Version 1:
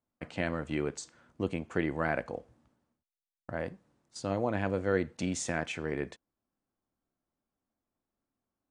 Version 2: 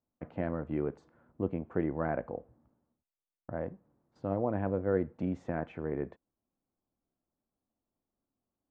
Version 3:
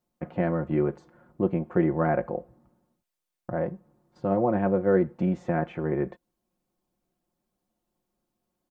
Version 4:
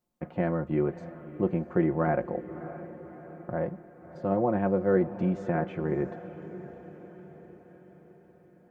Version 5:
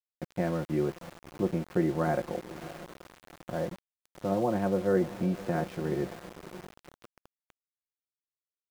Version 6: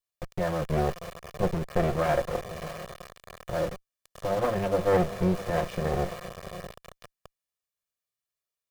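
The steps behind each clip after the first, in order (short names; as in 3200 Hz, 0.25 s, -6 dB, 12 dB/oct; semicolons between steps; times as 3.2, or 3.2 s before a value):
LPF 1000 Hz 12 dB/oct
comb 5.6 ms, depth 64%; gain +6.5 dB
diffused feedback echo 0.61 s, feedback 56%, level -14 dB; gain -2 dB
sample gate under -38.5 dBFS; gain -2 dB
minimum comb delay 1.7 ms; gain +6 dB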